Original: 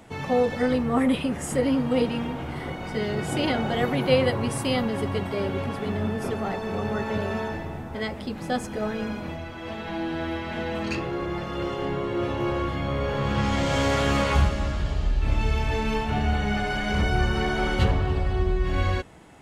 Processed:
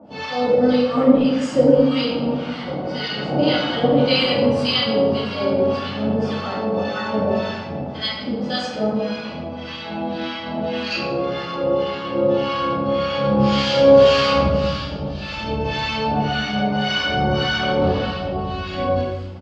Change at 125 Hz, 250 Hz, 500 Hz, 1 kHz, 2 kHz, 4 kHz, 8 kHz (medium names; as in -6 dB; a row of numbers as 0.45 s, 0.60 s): +0.5 dB, +6.0 dB, +9.0 dB, +5.5 dB, +4.0 dB, +11.0 dB, no reading